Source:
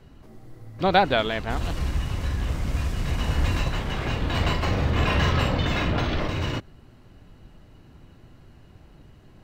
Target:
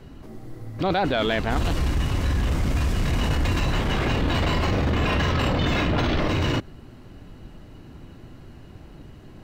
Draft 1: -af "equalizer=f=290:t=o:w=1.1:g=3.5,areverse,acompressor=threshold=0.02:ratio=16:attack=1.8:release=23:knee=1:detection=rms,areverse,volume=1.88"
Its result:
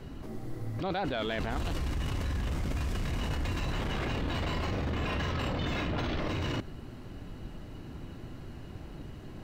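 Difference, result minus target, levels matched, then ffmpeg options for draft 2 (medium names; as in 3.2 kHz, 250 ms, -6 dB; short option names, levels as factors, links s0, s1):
compression: peak gain reduction +10 dB
-af "equalizer=f=290:t=o:w=1.1:g=3.5,areverse,acompressor=threshold=0.0668:ratio=16:attack=1.8:release=23:knee=1:detection=rms,areverse,volume=1.88"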